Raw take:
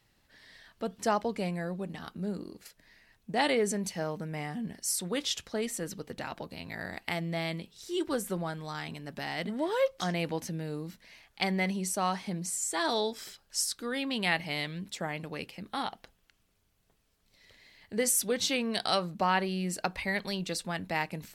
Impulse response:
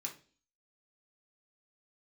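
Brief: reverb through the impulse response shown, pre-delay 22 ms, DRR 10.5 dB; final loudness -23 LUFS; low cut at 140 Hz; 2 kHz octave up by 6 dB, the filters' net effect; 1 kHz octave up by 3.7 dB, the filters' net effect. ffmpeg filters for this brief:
-filter_complex "[0:a]highpass=140,equalizer=f=1000:t=o:g=3.5,equalizer=f=2000:t=o:g=6,asplit=2[s0][s1];[1:a]atrim=start_sample=2205,adelay=22[s2];[s1][s2]afir=irnorm=-1:irlink=0,volume=0.355[s3];[s0][s3]amix=inputs=2:normalize=0,volume=2.11"

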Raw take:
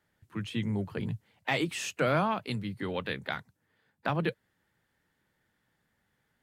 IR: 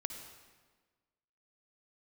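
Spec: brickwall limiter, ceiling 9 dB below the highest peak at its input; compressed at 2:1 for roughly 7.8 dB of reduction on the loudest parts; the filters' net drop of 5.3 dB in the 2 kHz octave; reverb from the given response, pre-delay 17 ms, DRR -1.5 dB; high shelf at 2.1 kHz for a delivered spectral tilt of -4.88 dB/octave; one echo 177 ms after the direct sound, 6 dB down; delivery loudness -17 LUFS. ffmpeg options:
-filter_complex "[0:a]equalizer=f=2000:t=o:g=-9,highshelf=f=2100:g=3,acompressor=threshold=0.0126:ratio=2,alimiter=level_in=2:limit=0.0631:level=0:latency=1,volume=0.501,aecho=1:1:177:0.501,asplit=2[s0][s1];[1:a]atrim=start_sample=2205,adelay=17[s2];[s1][s2]afir=irnorm=-1:irlink=0,volume=1.26[s3];[s0][s3]amix=inputs=2:normalize=0,volume=10"

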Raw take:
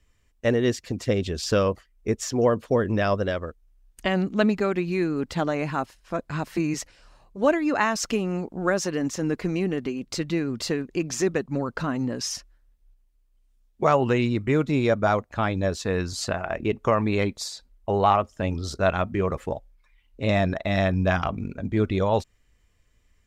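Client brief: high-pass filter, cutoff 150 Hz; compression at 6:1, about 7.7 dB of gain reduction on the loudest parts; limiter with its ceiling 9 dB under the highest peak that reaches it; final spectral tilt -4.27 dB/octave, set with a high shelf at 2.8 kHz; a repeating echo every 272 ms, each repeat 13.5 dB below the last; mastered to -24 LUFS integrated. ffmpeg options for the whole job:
-af "highpass=150,highshelf=f=2800:g=4,acompressor=threshold=0.0708:ratio=6,alimiter=limit=0.0944:level=0:latency=1,aecho=1:1:272|544:0.211|0.0444,volume=2.37"

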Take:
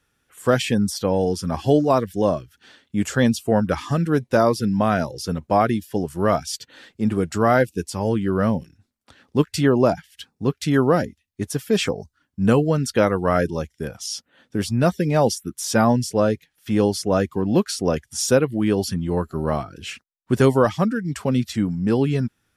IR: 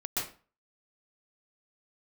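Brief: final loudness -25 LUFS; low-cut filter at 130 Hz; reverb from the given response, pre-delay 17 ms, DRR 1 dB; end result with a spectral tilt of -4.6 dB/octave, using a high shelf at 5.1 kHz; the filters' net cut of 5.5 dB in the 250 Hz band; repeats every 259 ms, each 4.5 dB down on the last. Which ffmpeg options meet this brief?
-filter_complex "[0:a]highpass=130,equalizer=f=250:t=o:g=-6.5,highshelf=f=5100:g=4.5,aecho=1:1:259|518|777|1036|1295|1554|1813|2072|2331:0.596|0.357|0.214|0.129|0.0772|0.0463|0.0278|0.0167|0.01,asplit=2[s0][s1];[1:a]atrim=start_sample=2205,adelay=17[s2];[s1][s2]afir=irnorm=-1:irlink=0,volume=0.473[s3];[s0][s3]amix=inputs=2:normalize=0,volume=0.531"

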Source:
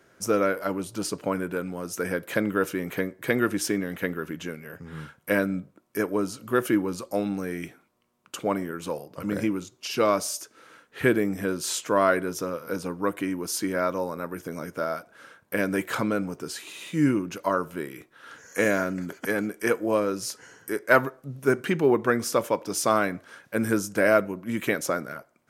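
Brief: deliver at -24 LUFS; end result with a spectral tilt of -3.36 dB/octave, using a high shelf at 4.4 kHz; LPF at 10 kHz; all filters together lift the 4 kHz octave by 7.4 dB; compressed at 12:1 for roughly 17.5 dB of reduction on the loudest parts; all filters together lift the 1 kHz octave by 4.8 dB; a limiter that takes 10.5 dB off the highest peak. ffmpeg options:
-af "lowpass=10000,equalizer=f=1000:t=o:g=5.5,equalizer=f=4000:t=o:g=6,highshelf=f=4400:g=6,acompressor=threshold=0.0398:ratio=12,volume=3.76,alimiter=limit=0.282:level=0:latency=1"

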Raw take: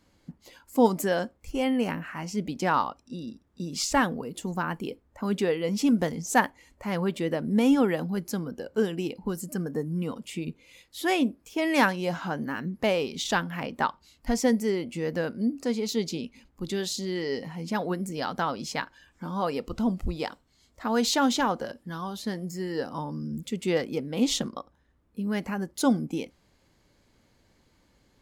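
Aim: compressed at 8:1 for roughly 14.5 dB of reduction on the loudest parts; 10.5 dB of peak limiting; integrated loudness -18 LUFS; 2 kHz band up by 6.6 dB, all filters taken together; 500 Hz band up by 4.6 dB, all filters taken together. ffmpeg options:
-af "equalizer=f=500:t=o:g=5,equalizer=f=2000:t=o:g=8,acompressor=threshold=0.0447:ratio=8,volume=7.5,alimiter=limit=0.398:level=0:latency=1"

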